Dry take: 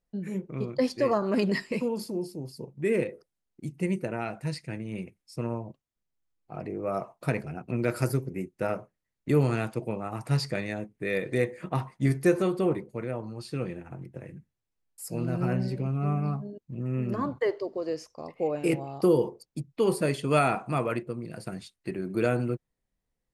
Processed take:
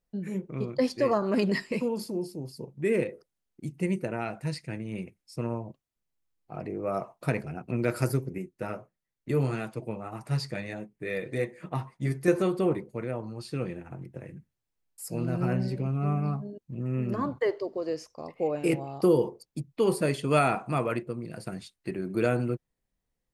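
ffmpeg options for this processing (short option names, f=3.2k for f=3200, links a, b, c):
-filter_complex "[0:a]asettb=1/sr,asplit=3[a][b][c];[a]atrim=end=8.384[d];[b]atrim=start=8.38:end=12.28,asetpts=PTS-STARTPTS,afade=t=in:d=0.004:c=qsin,afade=t=out:st=3.896:d=0.004:c=qsin,flanger=delay=5:depth=3.9:regen=-38:speed=1.6:shape=sinusoidal[e];[c]atrim=start=12.276[f];[d][e]acrossfade=d=0.004:c1=hsin:c2=qsin[g];[g][f]acrossfade=d=0.004:c1=qsin:c2=hsin"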